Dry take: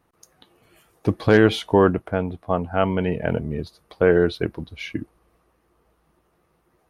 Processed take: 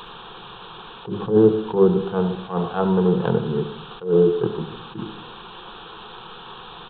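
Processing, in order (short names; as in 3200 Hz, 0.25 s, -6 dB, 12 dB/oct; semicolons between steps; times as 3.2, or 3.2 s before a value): switching dead time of 0.23 ms; treble ducked by the level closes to 510 Hz, closed at -15.5 dBFS; HPF 94 Hz 6 dB/oct; requantised 6-bit, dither triangular; fixed phaser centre 410 Hz, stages 8; downsampling 8000 Hz; dynamic EQ 2400 Hz, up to -4 dB, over -55 dBFS, Q 2.3; in parallel at -2 dB: compressor, threshold -25 dBFS, peak gain reduction 10 dB; on the sum: notches 50/100/150/200/250/300/350/400 Hz; on a send at -11 dB: reverb RT60 0.65 s, pre-delay 30 ms; on the sum: attack slew limiter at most 170 dB/s; gain +4 dB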